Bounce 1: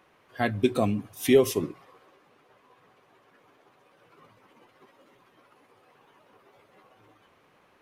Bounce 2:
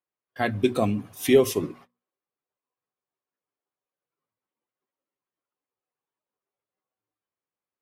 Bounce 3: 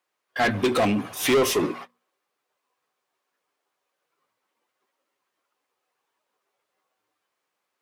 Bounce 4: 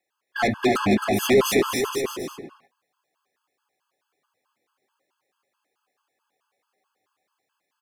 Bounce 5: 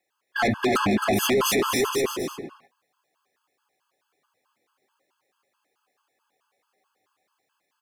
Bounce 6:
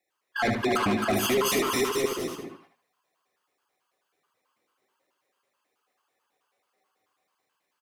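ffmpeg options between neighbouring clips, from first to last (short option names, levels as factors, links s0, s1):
-af "agate=range=0.0158:threshold=0.00398:ratio=16:detection=peak,bandreject=f=60:t=h:w=6,bandreject=f=120:t=h:w=6,bandreject=f=180:t=h:w=6,bandreject=f=240:t=h:w=6,volume=1.19"
-filter_complex "[0:a]asplit=2[s0][s1];[s1]highpass=f=720:p=1,volume=28.2,asoftclip=type=tanh:threshold=0.473[s2];[s0][s2]amix=inputs=2:normalize=0,lowpass=f=4200:p=1,volume=0.501,volume=0.501"
-af "aecho=1:1:270|472.5|624.4|738.3|823.7:0.631|0.398|0.251|0.158|0.1,afftfilt=real='re*gt(sin(2*PI*4.6*pts/sr)*(1-2*mod(floor(b*sr/1024/860),2)),0)':imag='im*gt(sin(2*PI*4.6*pts/sr)*(1-2*mod(floor(b*sr/1024/860),2)),0)':win_size=1024:overlap=0.75,volume=1.33"
-af "alimiter=limit=0.15:level=0:latency=1:release=14,volume=1.33"
-af "aecho=1:1:75|150|225:0.501|0.12|0.0289,volume=0.668"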